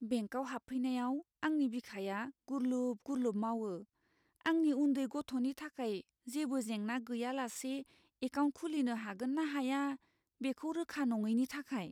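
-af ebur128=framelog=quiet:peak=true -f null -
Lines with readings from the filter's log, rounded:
Integrated loudness:
  I:         -37.6 LUFS
  Threshold: -47.8 LUFS
Loudness range:
  LRA:         2.3 LU
  Threshold: -57.9 LUFS
  LRA low:   -39.1 LUFS
  LRA high:  -36.8 LUFS
True peak:
  Peak:      -24.3 dBFS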